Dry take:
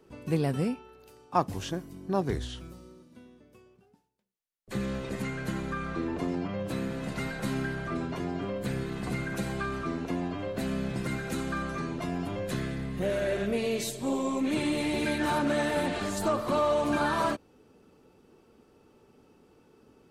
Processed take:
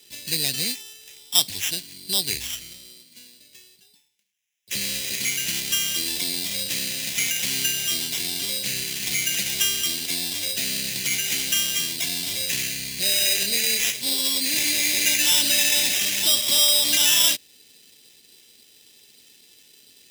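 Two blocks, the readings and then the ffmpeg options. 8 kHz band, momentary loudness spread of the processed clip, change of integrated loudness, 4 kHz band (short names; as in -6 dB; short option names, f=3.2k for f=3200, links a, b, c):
+23.5 dB, 10 LU, +10.5 dB, +22.0 dB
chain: -filter_complex "[0:a]highpass=62,asplit=2[a][b];[b]alimiter=limit=-21dB:level=0:latency=1,volume=-3dB[c];[a][c]amix=inputs=2:normalize=0,acrusher=samples=10:mix=1:aa=0.000001,aexciter=amount=13:drive=8.2:freq=2k,volume=-12.5dB"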